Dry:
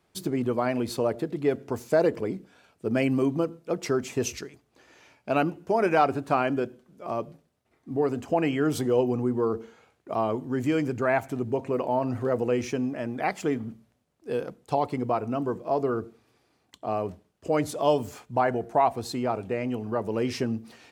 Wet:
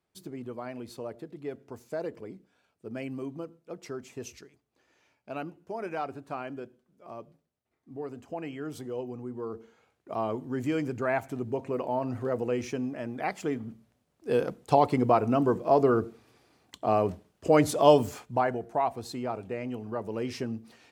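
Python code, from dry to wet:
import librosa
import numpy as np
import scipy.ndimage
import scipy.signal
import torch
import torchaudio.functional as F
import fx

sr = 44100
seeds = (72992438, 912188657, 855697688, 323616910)

y = fx.gain(x, sr, db=fx.line((9.23, -12.5), (10.25, -4.0), (13.64, -4.0), (14.42, 4.0), (18.0, 4.0), (18.62, -5.5)))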